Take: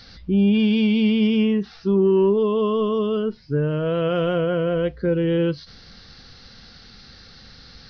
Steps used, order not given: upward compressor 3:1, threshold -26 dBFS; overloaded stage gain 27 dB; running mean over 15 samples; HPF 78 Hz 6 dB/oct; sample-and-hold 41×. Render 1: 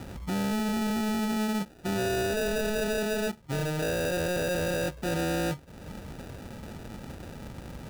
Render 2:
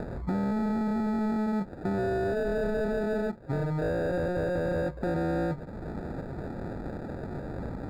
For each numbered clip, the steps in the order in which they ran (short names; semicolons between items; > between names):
upward compressor > running mean > overloaded stage > HPF > sample-and-hold; overloaded stage > HPF > upward compressor > sample-and-hold > running mean